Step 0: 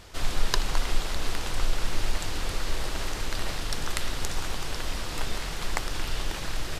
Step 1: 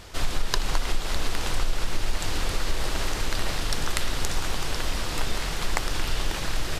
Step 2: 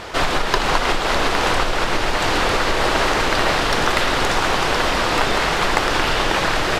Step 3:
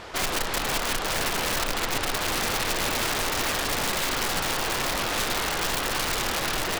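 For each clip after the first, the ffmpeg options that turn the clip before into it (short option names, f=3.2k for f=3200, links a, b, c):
-af "acompressor=threshold=-21dB:ratio=6,volume=4dB"
-filter_complex "[0:a]asplit=2[a][b];[b]highpass=f=720:p=1,volume=22dB,asoftclip=type=tanh:threshold=-1dB[c];[a][c]amix=inputs=2:normalize=0,lowpass=f=1.1k:p=1,volume=-6dB,volume=5dB"
-af "aeval=exprs='(mod(3.98*val(0)+1,2)-1)/3.98':c=same,volume=-8dB"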